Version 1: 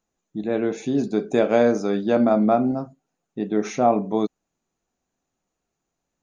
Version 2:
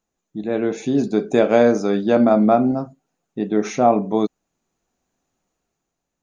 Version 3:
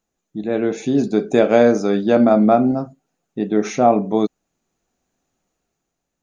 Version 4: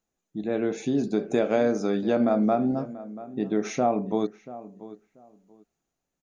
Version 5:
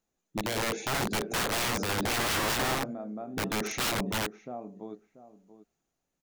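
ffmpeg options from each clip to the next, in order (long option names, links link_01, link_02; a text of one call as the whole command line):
ffmpeg -i in.wav -af "dynaudnorm=framelen=100:gausssize=13:maxgain=5dB" out.wav
ffmpeg -i in.wav -af "equalizer=frequency=1000:width=4.2:gain=-3,volume=1.5dB" out.wav
ffmpeg -i in.wav -filter_complex "[0:a]acompressor=threshold=-16dB:ratio=2,asplit=2[link_01][link_02];[link_02]adelay=686,lowpass=frequency=1700:poles=1,volume=-16dB,asplit=2[link_03][link_04];[link_04]adelay=686,lowpass=frequency=1700:poles=1,volume=0.21[link_05];[link_01][link_03][link_05]amix=inputs=3:normalize=0,volume=-5.5dB" out.wav
ffmpeg -i in.wav -af "aeval=exprs='(mod(15.8*val(0)+1,2)-1)/15.8':channel_layout=same" out.wav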